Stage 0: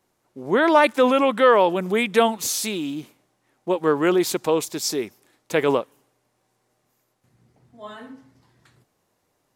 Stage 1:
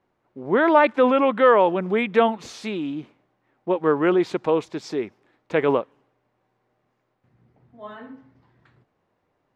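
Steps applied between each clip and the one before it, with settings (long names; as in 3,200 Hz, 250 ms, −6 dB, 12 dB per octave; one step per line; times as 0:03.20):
low-pass filter 2,400 Hz 12 dB per octave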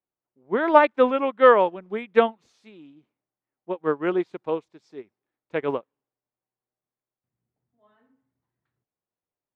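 expander for the loud parts 2.5 to 1, over −30 dBFS
level +3 dB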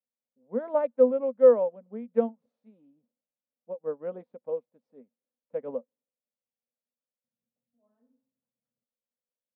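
pair of resonant band-passes 350 Hz, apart 1.1 octaves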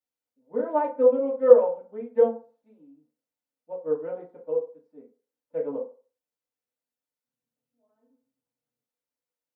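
feedback delay network reverb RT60 0.37 s, low-frequency decay 0.75×, high-frequency decay 0.55×, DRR −6 dB
level −4.5 dB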